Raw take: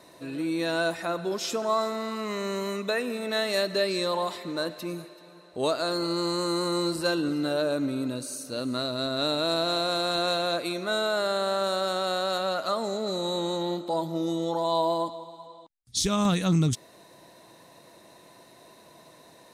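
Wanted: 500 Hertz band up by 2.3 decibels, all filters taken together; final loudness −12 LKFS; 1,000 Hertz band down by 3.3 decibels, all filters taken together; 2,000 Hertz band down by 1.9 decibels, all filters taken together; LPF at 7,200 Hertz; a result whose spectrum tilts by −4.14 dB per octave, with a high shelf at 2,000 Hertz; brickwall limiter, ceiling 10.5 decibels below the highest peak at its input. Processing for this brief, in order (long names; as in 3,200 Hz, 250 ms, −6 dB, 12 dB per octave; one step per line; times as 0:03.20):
low-pass filter 7,200 Hz
parametric band 500 Hz +5 dB
parametric band 1,000 Hz −7.5 dB
high-shelf EQ 2,000 Hz +6 dB
parametric band 2,000 Hz −3.5 dB
level +17 dB
brickwall limiter −3.5 dBFS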